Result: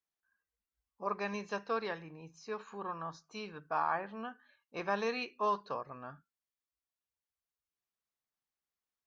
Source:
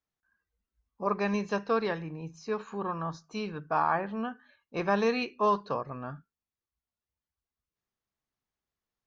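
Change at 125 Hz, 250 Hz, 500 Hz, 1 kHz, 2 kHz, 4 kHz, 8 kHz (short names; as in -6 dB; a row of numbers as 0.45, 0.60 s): -12.0 dB, -11.0 dB, -8.0 dB, -5.5 dB, -5.0 dB, -4.5 dB, n/a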